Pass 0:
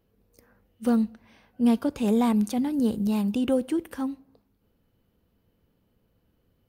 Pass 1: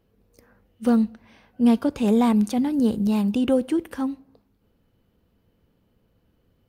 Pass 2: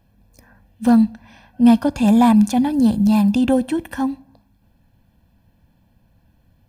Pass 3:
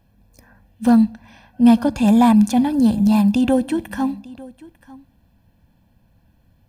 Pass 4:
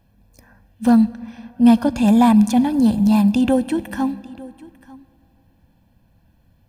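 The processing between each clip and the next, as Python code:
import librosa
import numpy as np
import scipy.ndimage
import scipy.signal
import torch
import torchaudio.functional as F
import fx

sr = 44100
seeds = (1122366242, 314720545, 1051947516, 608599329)

y1 = fx.high_shelf(x, sr, hz=10000.0, db=-7.0)
y1 = y1 * librosa.db_to_amplitude(3.5)
y2 = y1 + 0.83 * np.pad(y1, (int(1.2 * sr / 1000.0), 0))[:len(y1)]
y2 = y2 * librosa.db_to_amplitude(4.5)
y3 = y2 + 10.0 ** (-20.5 / 20.0) * np.pad(y2, (int(897 * sr / 1000.0), 0))[:len(y2)]
y4 = fx.rev_freeverb(y3, sr, rt60_s=3.0, hf_ratio=0.55, predelay_ms=65, drr_db=20.0)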